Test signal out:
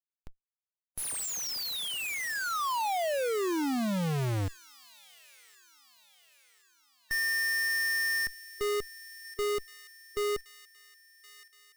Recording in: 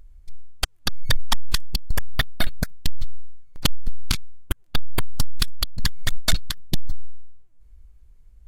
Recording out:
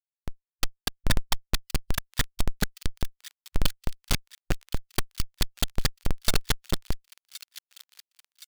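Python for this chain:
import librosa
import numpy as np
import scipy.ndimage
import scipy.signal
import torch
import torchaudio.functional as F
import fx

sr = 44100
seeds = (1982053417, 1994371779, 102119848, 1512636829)

y = fx.schmitt(x, sr, flips_db=-34.5)
y = fx.echo_wet_highpass(y, sr, ms=1069, feedback_pct=50, hz=2500.0, wet_db=-14.0)
y = fx.hpss(y, sr, part='percussive', gain_db=-6)
y = y * librosa.db_to_amplitude(2.5)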